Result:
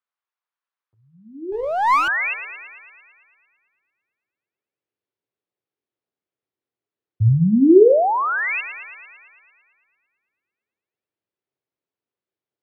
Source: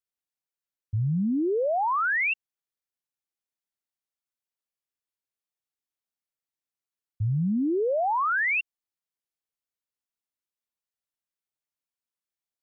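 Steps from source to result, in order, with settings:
parametric band 390 Hz +14 dB 1.2 octaves
mains-hum notches 50/100/150/200/250/300/350/400/450/500 Hz
on a send: delay with a high-pass on its return 112 ms, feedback 68%, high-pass 1,700 Hz, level −9 dB
on the sum: high-pass filter sweep 1,100 Hz → 100 Hz, 0:01.90–0:03.18
high-frequency loss of the air 230 metres
0:01.52–0:02.08: windowed peak hold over 9 samples
level +3.5 dB

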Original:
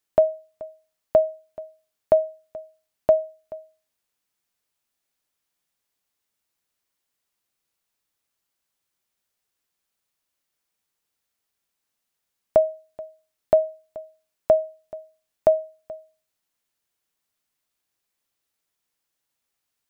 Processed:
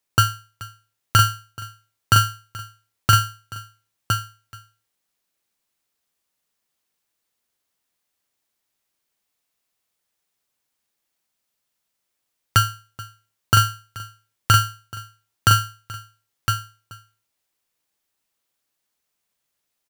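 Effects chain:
notch filter 690 Hz, Q 12
on a send: single-tap delay 1,011 ms −5.5 dB
on the sum: buffer that repeats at 0:09.21/0:11.25, samples 2,048, times 15
ring modulator with a square carrier 740 Hz
level +1.5 dB

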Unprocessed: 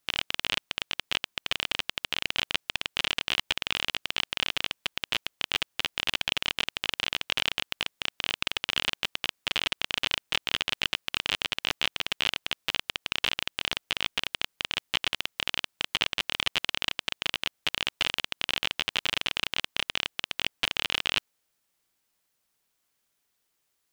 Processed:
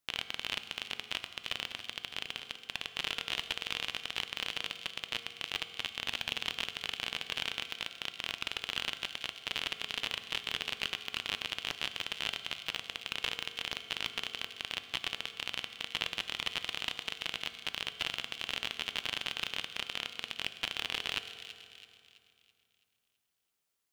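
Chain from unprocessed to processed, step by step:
0:01.67–0:02.62: compressor whose output falls as the input rises −33 dBFS, ratio −0.5
delay with a high-pass on its return 330 ms, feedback 43%, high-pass 2,600 Hz, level −10 dB
convolution reverb RT60 2.6 s, pre-delay 3 ms, DRR 9.5 dB
level −7.5 dB

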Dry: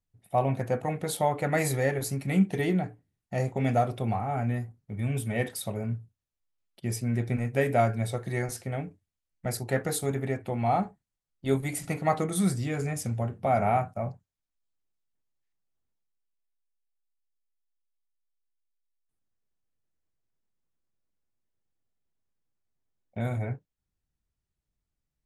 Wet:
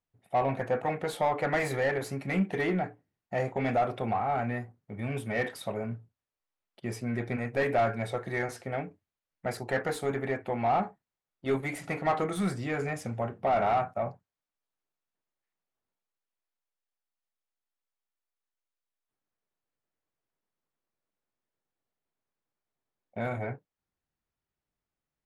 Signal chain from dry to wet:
dynamic equaliser 1,900 Hz, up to +4 dB, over −43 dBFS, Q 0.83
mid-hump overdrive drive 20 dB, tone 1,100 Hz, clips at −9 dBFS
level −6.5 dB

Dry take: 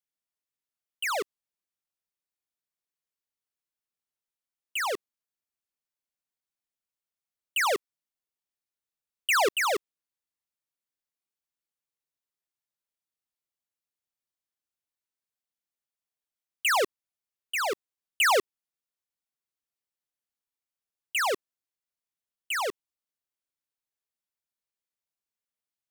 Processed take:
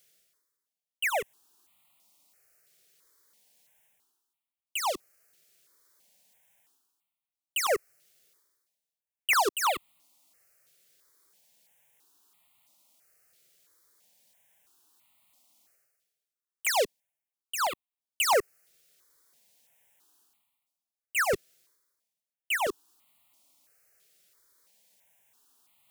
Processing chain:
high-pass filter 140 Hz 6 dB per octave
reversed playback
upward compression, threshold −41 dBFS
reversed playback
leveller curve on the samples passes 1
step-sequenced phaser 3 Hz 260–1,600 Hz

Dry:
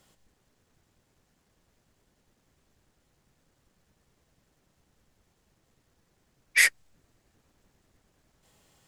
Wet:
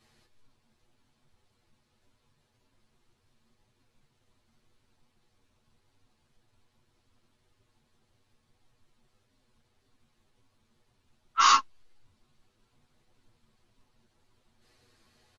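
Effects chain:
comb filter 4.7 ms, depth 75%
wrong playback speed 78 rpm record played at 45 rpm
string-ensemble chorus

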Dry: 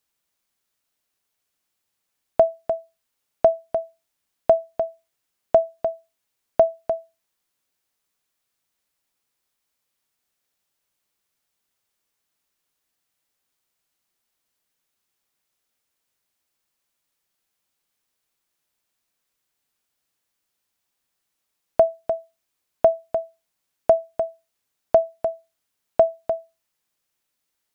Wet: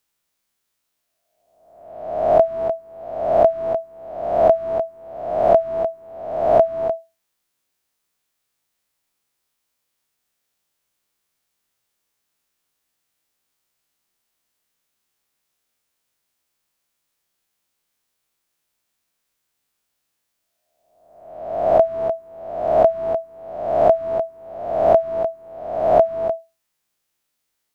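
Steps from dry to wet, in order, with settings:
peak hold with a rise ahead of every peak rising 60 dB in 1.02 s

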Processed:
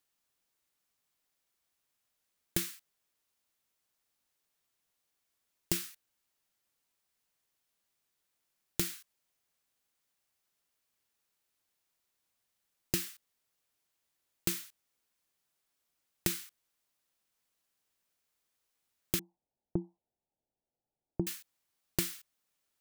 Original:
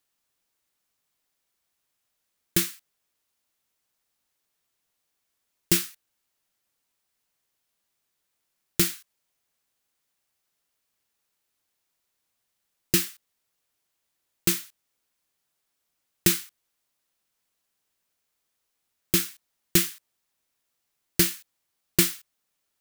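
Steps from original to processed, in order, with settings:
0:19.19–0:21.27: Butterworth low-pass 900 Hz 96 dB per octave
downward compressor 10 to 1, threshold −24 dBFS, peak gain reduction 10.5 dB
level −3.5 dB

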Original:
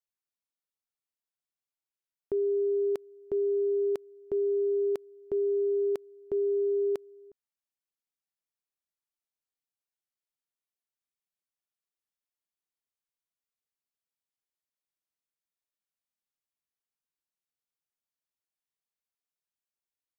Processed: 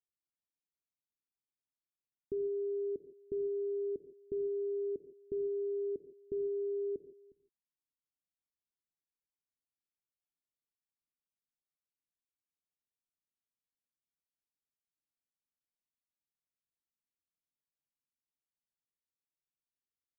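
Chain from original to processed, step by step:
inverse Chebyshev low-pass filter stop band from 970 Hz, stop band 50 dB
reverb whose tail is shaped and stops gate 180 ms flat, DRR 10 dB
level −2 dB

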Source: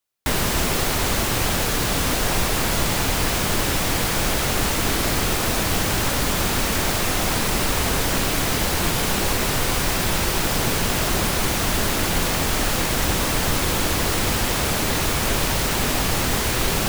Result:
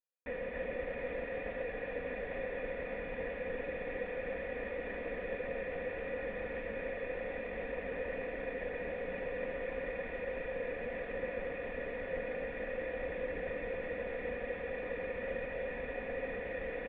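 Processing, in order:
lower of the sound and its delayed copy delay 4.1 ms
formant resonators in series e
single-tap delay 272 ms −4 dB
level −3 dB

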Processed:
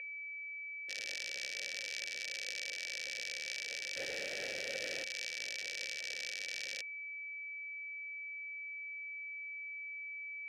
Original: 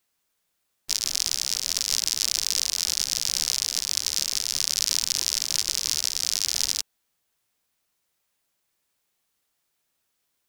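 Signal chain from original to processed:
0:03.96–0:05.04: converter with a step at zero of −27.5 dBFS
in parallel at −1 dB: compressor whose output falls as the input rises −31 dBFS, ratio −0.5
on the sum: steady tone 2,300 Hz −28 dBFS
formant filter e
level +1 dB

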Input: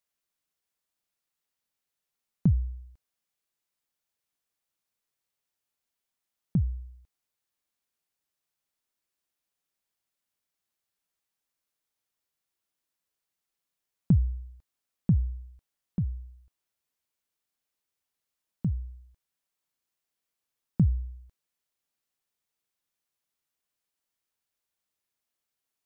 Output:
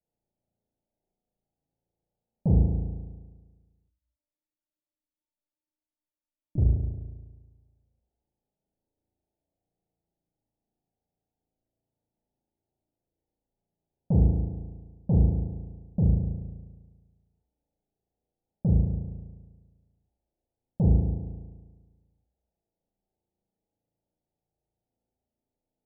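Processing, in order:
0:02.77–0:06.58: tuned comb filter 300 Hz, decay 0.18 s, harmonics all, mix 100%
soft clipping −30 dBFS, distortion −5 dB
Butterworth low-pass 880 Hz 96 dB per octave
low-shelf EQ 470 Hz +10.5 dB
flutter between parallel walls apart 6.1 metres, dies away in 1.4 s
highs frequency-modulated by the lows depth 0.16 ms

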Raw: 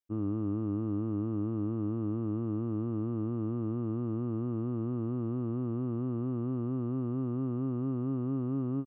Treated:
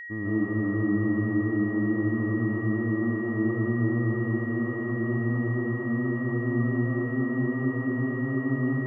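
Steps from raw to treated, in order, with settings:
comb and all-pass reverb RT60 0.97 s, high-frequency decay 0.7×, pre-delay 90 ms, DRR −6 dB
steady tone 1,900 Hz −37 dBFS

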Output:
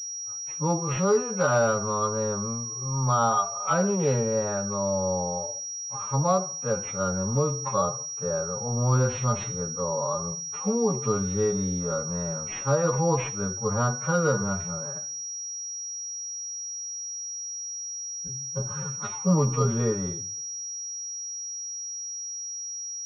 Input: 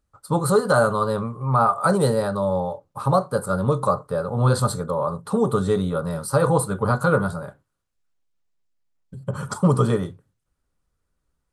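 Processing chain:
phase-vocoder stretch with locked phases 2×
switching amplifier with a slow clock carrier 5,700 Hz
level −5 dB

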